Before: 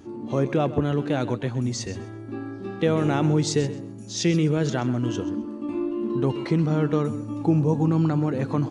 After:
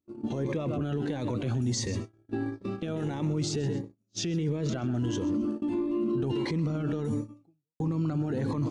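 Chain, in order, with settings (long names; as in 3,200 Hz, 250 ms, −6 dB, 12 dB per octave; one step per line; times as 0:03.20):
0:03.45–0:04.95: high-shelf EQ 6,200 Hz −9 dB
noise gate −32 dBFS, range −47 dB
0:07.16–0:07.80: fade out exponential
brickwall limiter −30.5 dBFS, peak gain reduction 21 dB
phaser whose notches keep moving one way rising 1.5 Hz
level +8.5 dB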